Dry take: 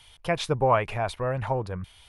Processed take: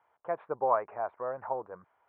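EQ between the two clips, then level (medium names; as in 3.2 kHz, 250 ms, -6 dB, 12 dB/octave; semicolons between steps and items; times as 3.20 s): high-pass 540 Hz 12 dB/octave; low-pass 1.4 kHz 24 dB/octave; distance through air 470 m; -1.5 dB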